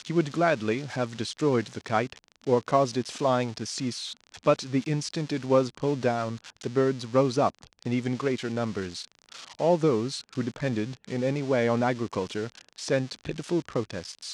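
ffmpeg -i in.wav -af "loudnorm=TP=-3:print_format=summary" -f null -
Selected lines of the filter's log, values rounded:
Input Integrated:    -28.2 LUFS
Input True Peak:      -8.6 dBTP
Input LRA:             2.3 LU
Input Threshold:     -38.3 LUFS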